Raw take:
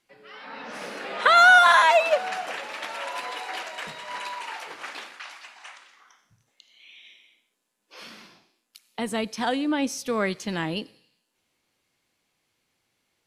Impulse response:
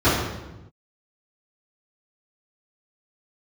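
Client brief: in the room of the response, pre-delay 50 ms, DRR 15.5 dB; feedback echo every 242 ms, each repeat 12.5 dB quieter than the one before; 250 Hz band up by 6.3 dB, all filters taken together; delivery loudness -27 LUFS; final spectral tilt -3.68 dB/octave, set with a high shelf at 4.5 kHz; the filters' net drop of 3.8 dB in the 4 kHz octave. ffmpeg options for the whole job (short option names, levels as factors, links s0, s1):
-filter_complex "[0:a]equalizer=f=250:t=o:g=7.5,equalizer=f=4000:t=o:g=-9,highshelf=f=4500:g=8.5,aecho=1:1:242|484|726:0.237|0.0569|0.0137,asplit=2[s0][s1];[1:a]atrim=start_sample=2205,adelay=50[s2];[s1][s2]afir=irnorm=-1:irlink=0,volume=0.0133[s3];[s0][s3]amix=inputs=2:normalize=0,volume=0.501"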